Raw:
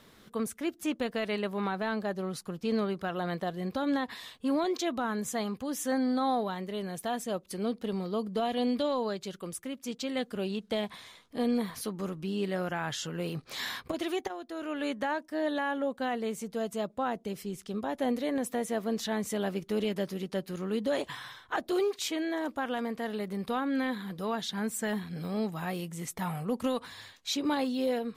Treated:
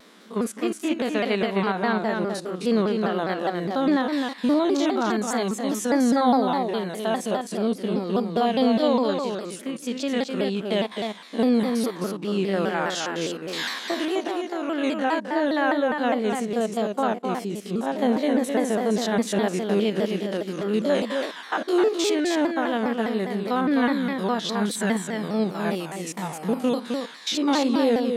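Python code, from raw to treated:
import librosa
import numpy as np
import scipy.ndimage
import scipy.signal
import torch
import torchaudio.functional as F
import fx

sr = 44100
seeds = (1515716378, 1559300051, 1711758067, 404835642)

y = fx.spec_steps(x, sr, hold_ms=50)
y = scipy.signal.sosfilt(scipy.signal.butter(2, 10000.0, 'lowpass', fs=sr, output='sos'), y)
y = y + 10.0 ** (-5.0 / 20.0) * np.pad(y, (int(259 * sr / 1000.0), 0))[:len(y)]
y = fx.dynamic_eq(y, sr, hz=1300.0, q=0.84, threshold_db=-46.0, ratio=4.0, max_db=-5, at=(25.79, 27.01))
y = fx.brickwall_highpass(y, sr, low_hz=180.0)
y = fx.vibrato_shape(y, sr, shape='saw_down', rate_hz=4.9, depth_cents=160.0)
y = y * librosa.db_to_amplitude(8.5)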